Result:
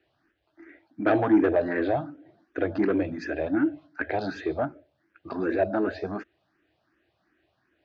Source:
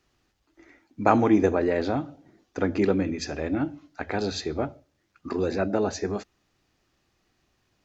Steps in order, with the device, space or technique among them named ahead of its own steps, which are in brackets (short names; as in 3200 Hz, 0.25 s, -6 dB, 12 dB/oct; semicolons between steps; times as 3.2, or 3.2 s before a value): barber-pole phaser into a guitar amplifier (endless phaser +2.7 Hz; soft clip -20 dBFS, distortion -12 dB; speaker cabinet 77–4100 Hz, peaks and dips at 210 Hz -3 dB, 320 Hz +9 dB, 640 Hz +9 dB, 1600 Hz +10 dB)